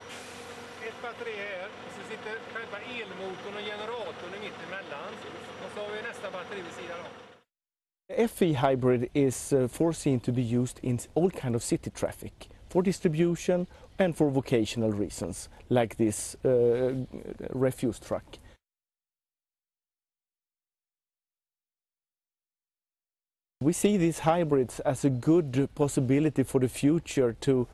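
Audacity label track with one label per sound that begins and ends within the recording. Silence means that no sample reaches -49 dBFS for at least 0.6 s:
8.090000	18.540000	sound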